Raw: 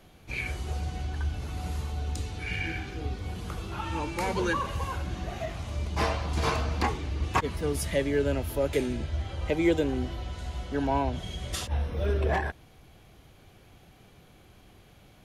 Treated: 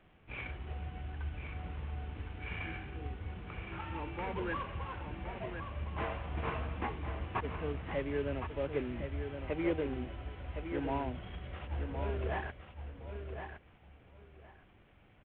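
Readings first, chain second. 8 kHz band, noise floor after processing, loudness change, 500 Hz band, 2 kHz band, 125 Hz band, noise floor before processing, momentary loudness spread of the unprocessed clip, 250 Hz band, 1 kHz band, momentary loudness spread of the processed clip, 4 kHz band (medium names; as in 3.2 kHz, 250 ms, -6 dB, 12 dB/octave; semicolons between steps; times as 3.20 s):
under -35 dB, -62 dBFS, -9.0 dB, -8.0 dB, -8.0 dB, -8.5 dB, -56 dBFS, 9 LU, -8.5 dB, -8.5 dB, 10 LU, -13.0 dB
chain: CVSD coder 16 kbps; feedback delay 1064 ms, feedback 19%, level -7.5 dB; trim -8.5 dB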